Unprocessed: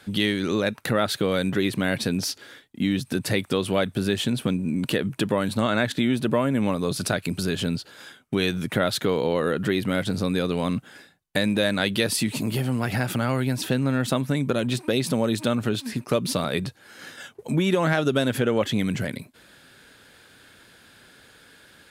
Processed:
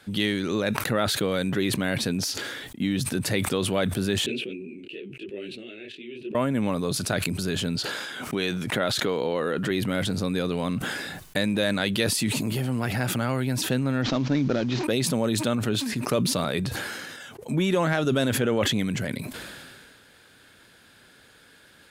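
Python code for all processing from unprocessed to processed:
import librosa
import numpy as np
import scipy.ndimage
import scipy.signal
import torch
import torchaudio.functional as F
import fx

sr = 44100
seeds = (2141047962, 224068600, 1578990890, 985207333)

y = fx.chain(x, sr, fx.double_bandpass(hz=1000.0, octaves=2.8),
    fx.detune_double(cents=32), at=(4.26, 6.35))
y = fx.chain(y, sr, fx.highpass(hz=210.0, slope=6),
    fx.high_shelf(hz=11000.0, db=-7.5),
    fx.pre_swell(db_per_s=56.0), at=(7.76, 9.71))
y = fx.chain(y, sr, fx.cvsd(bps=32000),
    fx.peak_eq(hz=300.0, db=6.0, octaves=0.36), at=(14.02, 14.84))
y = fx.dynamic_eq(y, sr, hz=6800.0, q=4.8, threshold_db=-50.0, ratio=4.0, max_db=3)
y = fx.sustainer(y, sr, db_per_s=27.0)
y = F.gain(torch.from_numpy(y), -2.5).numpy()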